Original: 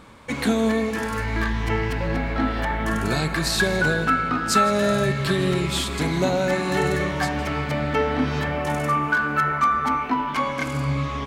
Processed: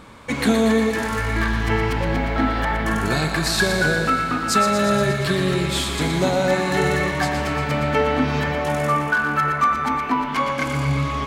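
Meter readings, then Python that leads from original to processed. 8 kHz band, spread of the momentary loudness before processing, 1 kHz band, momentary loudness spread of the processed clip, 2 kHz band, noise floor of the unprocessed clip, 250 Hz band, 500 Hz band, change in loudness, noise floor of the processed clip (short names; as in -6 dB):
+2.5 dB, 5 LU, +2.0 dB, 4 LU, +2.5 dB, -29 dBFS, +2.0 dB, +2.5 dB, +2.0 dB, -26 dBFS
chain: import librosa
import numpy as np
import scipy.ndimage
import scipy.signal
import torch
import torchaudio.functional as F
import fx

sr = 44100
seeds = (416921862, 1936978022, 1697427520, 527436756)

p1 = fx.rider(x, sr, range_db=5, speed_s=2.0)
p2 = x + F.gain(torch.from_numpy(p1), 0.0).numpy()
p3 = fx.echo_thinned(p2, sr, ms=118, feedback_pct=70, hz=400.0, wet_db=-7.5)
y = F.gain(torch.from_numpy(p3), -4.5).numpy()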